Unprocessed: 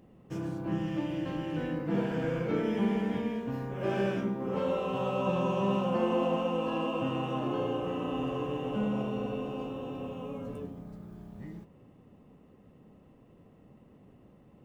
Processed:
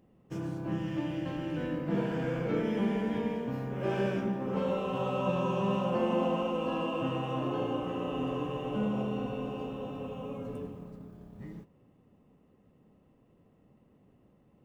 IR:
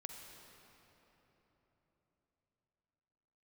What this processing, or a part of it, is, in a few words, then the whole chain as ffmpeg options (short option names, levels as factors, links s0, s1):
keyed gated reverb: -filter_complex "[0:a]asplit=3[s0][s1][s2];[1:a]atrim=start_sample=2205[s3];[s1][s3]afir=irnorm=-1:irlink=0[s4];[s2]apad=whole_len=645799[s5];[s4][s5]sidechaingate=range=0.0224:threshold=0.00631:ratio=16:detection=peak,volume=1.68[s6];[s0][s6]amix=inputs=2:normalize=0,volume=0.473"